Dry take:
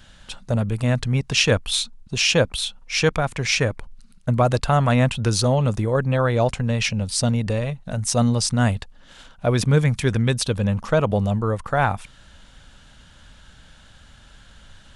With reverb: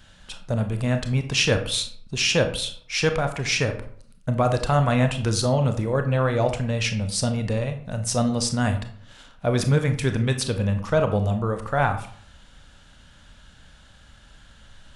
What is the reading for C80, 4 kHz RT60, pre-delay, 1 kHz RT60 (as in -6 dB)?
14.0 dB, 0.35 s, 24 ms, 0.55 s